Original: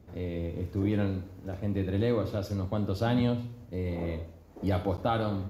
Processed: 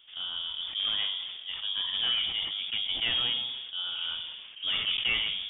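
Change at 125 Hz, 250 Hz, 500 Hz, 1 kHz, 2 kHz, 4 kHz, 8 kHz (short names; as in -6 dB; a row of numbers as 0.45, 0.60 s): -25.5 dB, -24.5 dB, -22.0 dB, -10.0 dB, +9.0 dB, +22.5 dB, n/a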